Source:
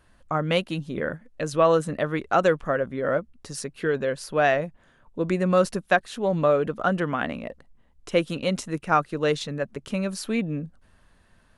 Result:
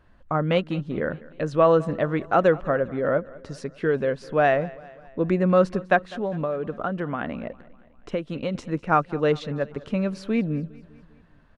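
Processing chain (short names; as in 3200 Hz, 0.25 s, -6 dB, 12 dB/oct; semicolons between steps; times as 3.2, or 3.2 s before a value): tape spacing loss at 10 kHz 23 dB; 6.04–8.55 compressor 6:1, threshold -27 dBFS, peak gain reduction 10 dB; feedback echo 0.201 s, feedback 56%, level -21 dB; gain +3 dB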